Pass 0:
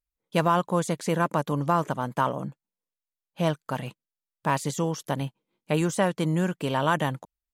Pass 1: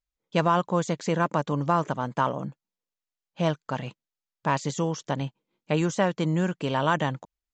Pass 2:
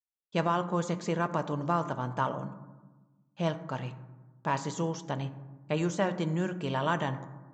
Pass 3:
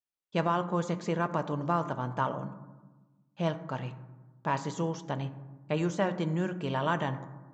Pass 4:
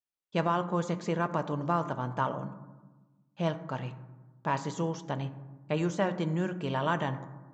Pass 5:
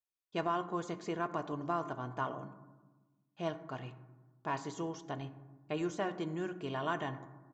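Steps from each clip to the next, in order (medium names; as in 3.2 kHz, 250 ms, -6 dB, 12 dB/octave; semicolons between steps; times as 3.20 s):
steep low-pass 7.5 kHz 96 dB/octave
gate with hold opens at -52 dBFS; on a send at -9.5 dB: reverberation RT60 1.3 s, pre-delay 4 ms; on the sum: trim -5.5 dB
treble shelf 6.7 kHz -8 dB
no audible change
comb 2.8 ms, depth 51%; trim -6.5 dB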